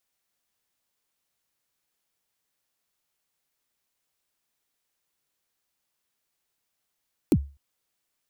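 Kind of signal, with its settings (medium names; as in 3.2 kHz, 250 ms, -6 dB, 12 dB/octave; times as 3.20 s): kick drum length 0.25 s, from 380 Hz, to 70 Hz, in 57 ms, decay 0.32 s, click on, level -12 dB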